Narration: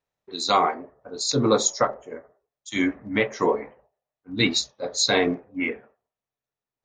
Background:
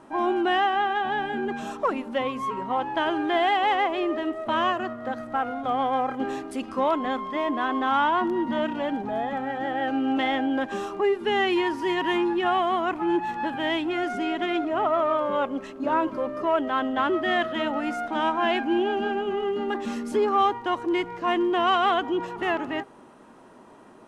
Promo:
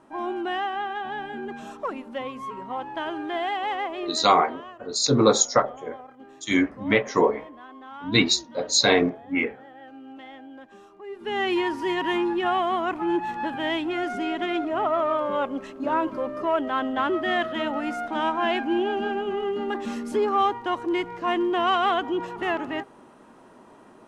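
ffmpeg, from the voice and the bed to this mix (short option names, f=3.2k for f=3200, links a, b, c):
-filter_complex "[0:a]adelay=3750,volume=2dB[a];[1:a]volume=12.5dB,afade=t=out:st=4.09:d=0.29:silence=0.223872,afade=t=in:st=11.06:d=0.46:silence=0.125893[b];[a][b]amix=inputs=2:normalize=0"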